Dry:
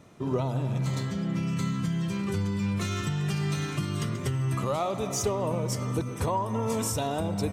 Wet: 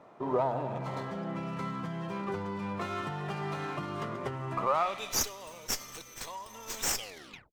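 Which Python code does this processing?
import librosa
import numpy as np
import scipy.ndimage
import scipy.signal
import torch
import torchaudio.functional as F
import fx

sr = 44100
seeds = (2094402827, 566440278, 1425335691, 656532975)

y = fx.tape_stop_end(x, sr, length_s=0.62)
y = fx.filter_sweep_bandpass(y, sr, from_hz=810.0, to_hz=6200.0, start_s=4.61, end_s=5.26, q=1.5)
y = fx.running_max(y, sr, window=3)
y = y * 10.0 ** (7.0 / 20.0)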